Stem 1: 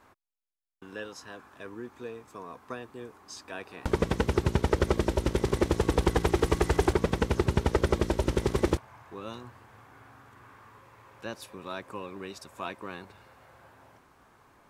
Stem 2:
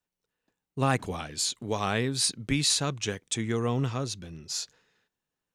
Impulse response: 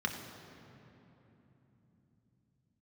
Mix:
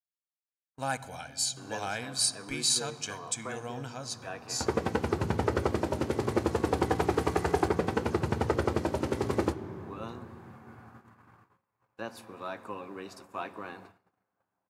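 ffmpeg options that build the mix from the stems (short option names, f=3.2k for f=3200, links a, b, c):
-filter_complex "[0:a]highpass=f=80:w=0.5412,highpass=f=80:w=1.3066,equalizer=f=750:t=o:w=0.32:g=6,flanger=delay=8.7:depth=1.4:regen=-59:speed=0.53:shape=triangular,adelay=750,volume=1dB,asplit=2[a][b];[b]volume=-14dB[c];[1:a]bass=f=250:g=-9,treble=f=4k:g=8,aecho=1:1:1.3:0.74,volume=-8.5dB,asplit=2[d][e];[e]volume=-14.5dB[f];[2:a]atrim=start_sample=2205[g];[c][f]amix=inputs=2:normalize=0[h];[h][g]afir=irnorm=-1:irlink=0[i];[a][d][i]amix=inputs=3:normalize=0,agate=range=-29dB:threshold=-50dB:ratio=16:detection=peak"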